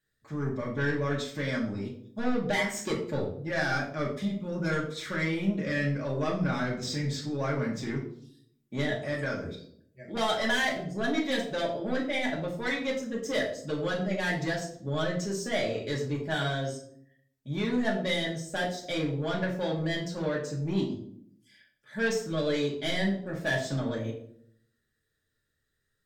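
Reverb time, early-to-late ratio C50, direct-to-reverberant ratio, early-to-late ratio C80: 0.65 s, 6.5 dB, -4.0 dB, 10.0 dB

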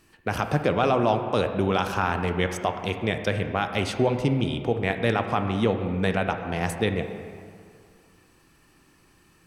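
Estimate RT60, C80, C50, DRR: 2.2 s, 8.5 dB, 7.5 dB, 6.0 dB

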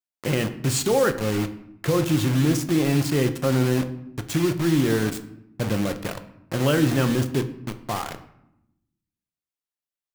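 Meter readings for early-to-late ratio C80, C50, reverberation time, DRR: 16.0 dB, 13.0 dB, 0.80 s, 8.0 dB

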